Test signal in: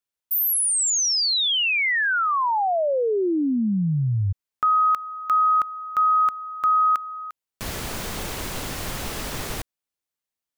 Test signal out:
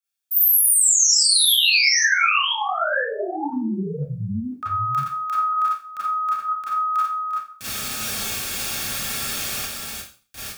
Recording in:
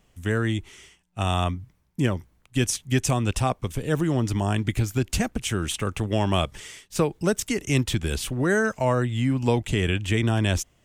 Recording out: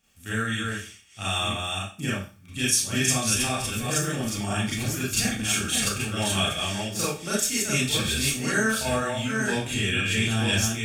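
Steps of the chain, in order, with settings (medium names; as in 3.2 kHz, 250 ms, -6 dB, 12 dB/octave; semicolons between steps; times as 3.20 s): chunks repeated in reverse 499 ms, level -3.5 dB; amplifier tone stack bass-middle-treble 5-5-5; comb of notches 1 kHz; Schroeder reverb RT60 0.38 s, combs from 28 ms, DRR -8.5 dB; loudness maximiser +10.5 dB; trim -6 dB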